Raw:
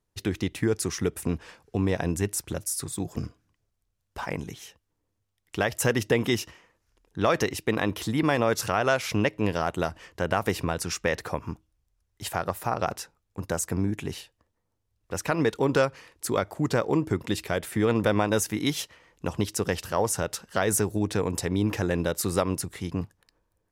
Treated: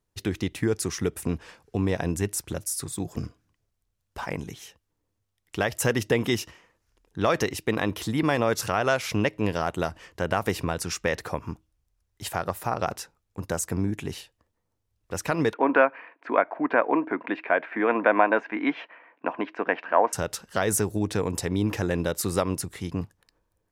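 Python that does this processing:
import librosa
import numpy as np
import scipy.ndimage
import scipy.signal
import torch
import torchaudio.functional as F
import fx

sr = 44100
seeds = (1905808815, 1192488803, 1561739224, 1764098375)

y = fx.cabinet(x, sr, low_hz=270.0, low_slope=24, high_hz=2400.0, hz=(270.0, 390.0, 680.0, 1000.0, 1600.0, 2400.0), db=(6, -4, 9, 8, 9, 8), at=(15.53, 20.13))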